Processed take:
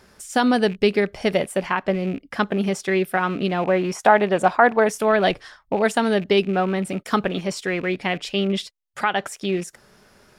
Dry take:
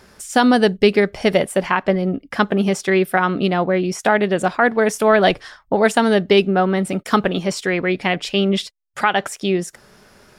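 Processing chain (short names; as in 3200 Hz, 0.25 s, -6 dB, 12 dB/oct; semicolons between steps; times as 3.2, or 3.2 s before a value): rattling part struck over -29 dBFS, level -26 dBFS; 3.63–4.87 bell 860 Hz +8.5 dB 1.4 oct; gain -4.5 dB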